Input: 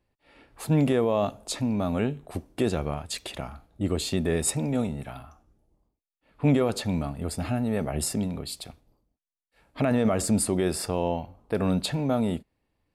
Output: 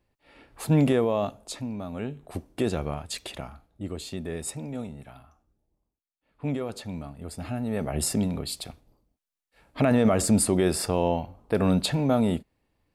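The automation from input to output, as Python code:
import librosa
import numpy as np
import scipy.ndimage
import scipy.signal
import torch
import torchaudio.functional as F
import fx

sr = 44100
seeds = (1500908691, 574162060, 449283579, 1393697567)

y = fx.gain(x, sr, db=fx.line((0.89, 1.5), (1.9, -9.0), (2.33, -1.0), (3.3, -1.0), (3.91, -8.0), (7.18, -8.0), (8.14, 2.5)))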